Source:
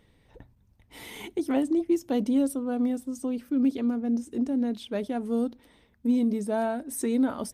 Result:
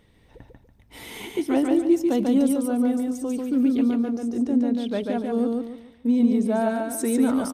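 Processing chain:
0:04.23–0:06.61: high-shelf EQ 5,700 Hz −6.5 dB
repeating echo 143 ms, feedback 31%, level −3 dB
level +3 dB

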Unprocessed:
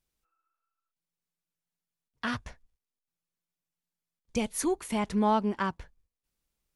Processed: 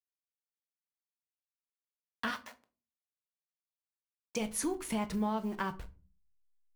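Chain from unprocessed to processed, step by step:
hold until the input has moved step −47.5 dBFS
0:02.30–0:04.39: high-pass filter 630 Hz → 290 Hz 12 dB per octave
downward compressor, threshold −31 dBFS, peak gain reduction 10 dB
rectangular room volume 210 cubic metres, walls furnished, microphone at 0.55 metres

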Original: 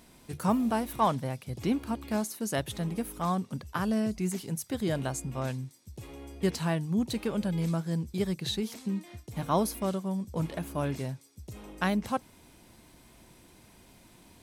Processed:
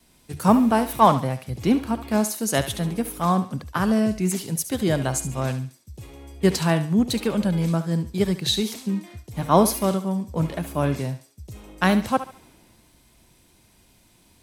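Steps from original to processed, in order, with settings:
noise gate with hold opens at −49 dBFS
feedback echo with a high-pass in the loop 71 ms, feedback 40%, high-pass 530 Hz, level −10.5 dB
multiband upward and downward expander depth 40%
level +8 dB

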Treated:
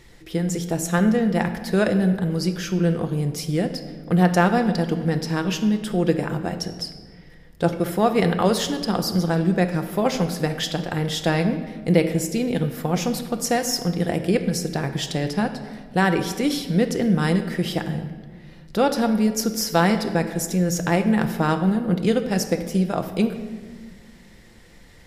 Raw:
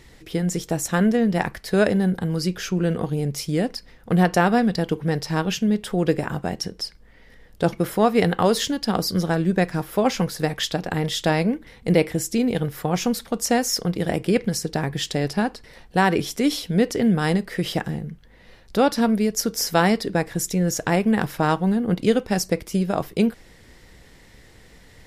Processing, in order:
rectangular room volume 1,700 cubic metres, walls mixed, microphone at 0.82 metres
level −1.5 dB

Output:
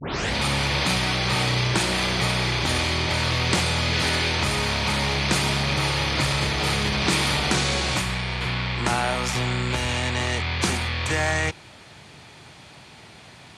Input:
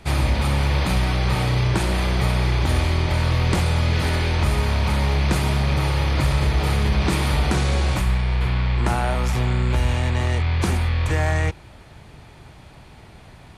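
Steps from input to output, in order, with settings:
turntable start at the beginning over 0.34 s
band-pass filter 120–8,000 Hz
high-shelf EQ 2,100 Hz +11 dB
level −1.5 dB

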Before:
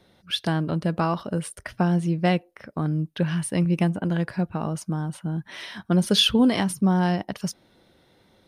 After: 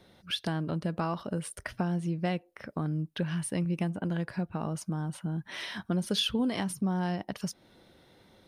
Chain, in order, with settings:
downward compressor 2 to 1, threshold −34 dBFS, peak gain reduction 11 dB

